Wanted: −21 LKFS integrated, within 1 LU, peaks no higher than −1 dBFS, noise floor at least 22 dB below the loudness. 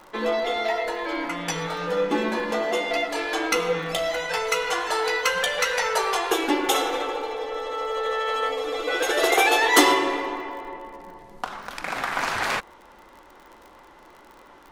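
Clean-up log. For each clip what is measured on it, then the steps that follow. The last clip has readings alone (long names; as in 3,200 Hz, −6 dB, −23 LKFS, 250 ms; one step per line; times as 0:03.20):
crackle rate 38 per second; integrated loudness −24.0 LKFS; sample peak −2.0 dBFS; target loudness −21.0 LKFS
→ click removal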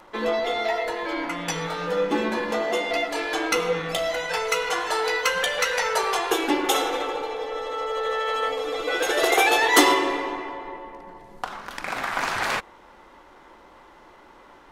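crackle rate 0.068 per second; integrated loudness −24.0 LKFS; sample peak −2.0 dBFS; target loudness −21.0 LKFS
→ level +3 dB
brickwall limiter −1 dBFS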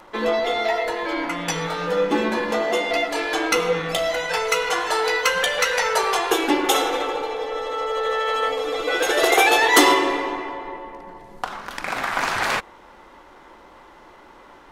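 integrated loudness −21.0 LKFS; sample peak −1.0 dBFS; background noise floor −48 dBFS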